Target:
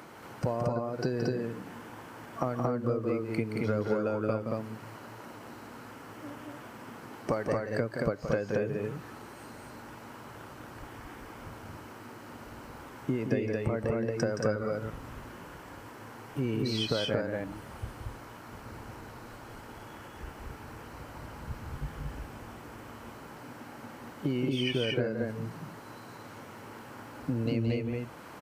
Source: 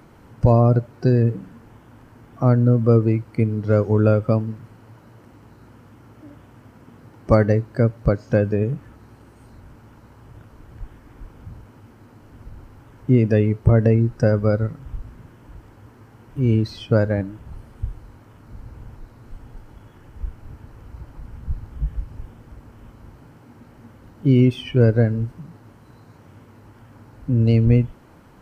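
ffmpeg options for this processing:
-af "highpass=f=580:p=1,acompressor=threshold=-33dB:ratio=12,aecho=1:1:172|227.4:0.447|0.794,volume=5.5dB"

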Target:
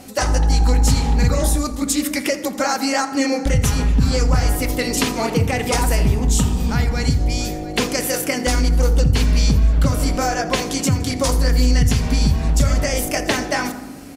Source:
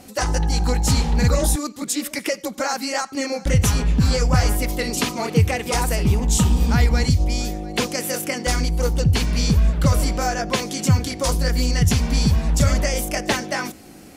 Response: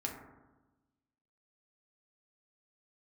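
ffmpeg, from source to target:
-filter_complex "[0:a]acompressor=threshold=-18dB:ratio=6,asplit=6[a][b][c][d][e][f];[b]adelay=83,afreqshift=-32,volume=-19dB[g];[c]adelay=166,afreqshift=-64,volume=-24.2dB[h];[d]adelay=249,afreqshift=-96,volume=-29.4dB[i];[e]adelay=332,afreqshift=-128,volume=-34.6dB[j];[f]adelay=415,afreqshift=-160,volume=-39.8dB[k];[a][g][h][i][j][k]amix=inputs=6:normalize=0,asplit=2[l][m];[1:a]atrim=start_sample=2205[n];[m][n]afir=irnorm=-1:irlink=0,volume=-3.5dB[o];[l][o]amix=inputs=2:normalize=0"

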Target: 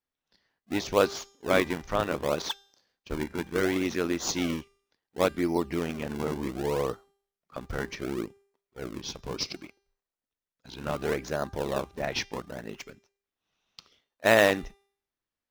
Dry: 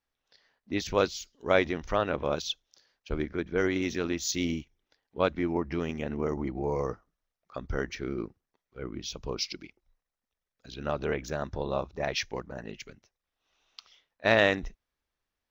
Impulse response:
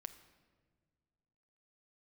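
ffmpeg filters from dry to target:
-filter_complex "[0:a]agate=range=-6dB:threshold=-56dB:ratio=16:detection=peak,asplit=2[a][b];[b]acrusher=samples=41:mix=1:aa=0.000001:lfo=1:lforange=65.6:lforate=0.68,volume=-5.5dB[c];[a][c]amix=inputs=2:normalize=0,lowshelf=f=130:g=-9,bandreject=f=397.5:t=h:w=4,bandreject=f=795:t=h:w=4,bandreject=f=1.1925k:t=h:w=4,bandreject=f=1.59k:t=h:w=4,bandreject=f=1.9875k:t=h:w=4,bandreject=f=2.385k:t=h:w=4,bandreject=f=2.7825k:t=h:w=4,bandreject=f=3.18k:t=h:w=4,bandreject=f=3.5775k:t=h:w=4,bandreject=f=3.975k:t=h:w=4,bandreject=f=4.3725k:t=h:w=4,bandreject=f=4.77k:t=h:w=4,bandreject=f=5.1675k:t=h:w=4,bandreject=f=5.565k:t=h:w=4,bandreject=f=5.9625k:t=h:w=4,bandreject=f=6.36k:t=h:w=4,bandreject=f=6.7575k:t=h:w=4,bandreject=f=7.155k:t=h:w=4,bandreject=f=7.5525k:t=h:w=4,bandreject=f=7.95k:t=h:w=4,bandreject=f=8.3475k:t=h:w=4,bandreject=f=8.745k:t=h:w=4,bandreject=f=9.1425k:t=h:w=4,bandreject=f=9.54k:t=h:w=4,bandreject=f=9.9375k:t=h:w=4,bandreject=f=10.335k:t=h:w=4,bandreject=f=10.7325k:t=h:w=4,bandreject=f=11.13k:t=h:w=4,bandreject=f=11.5275k:t=h:w=4,bandreject=f=11.925k:t=h:w=4,bandreject=f=12.3225k:t=h:w=4"

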